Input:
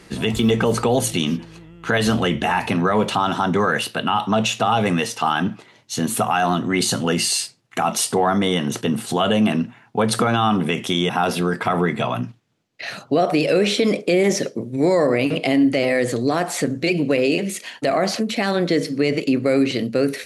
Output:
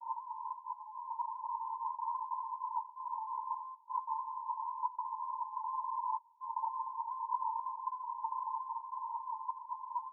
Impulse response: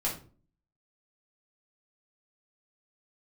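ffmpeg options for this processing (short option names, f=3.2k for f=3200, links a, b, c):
-af "afftfilt=real='re*lt(hypot(re,im),0.398)':imag='im*lt(hypot(re,im),0.398)':win_size=1024:overlap=0.75,acompressor=threshold=-32dB:ratio=20,alimiter=level_in=8dB:limit=-24dB:level=0:latency=1:release=12,volume=-8dB,dynaudnorm=f=470:g=11:m=4.5dB,aeval=exprs='val(0)*sin(2*PI*260*n/s)':c=same,aeval=exprs='clip(val(0),-1,0.00794)':c=same,asuperpass=centerf=480:order=20:qfactor=5.5,asetrate=88200,aresample=44100,volume=14.5dB"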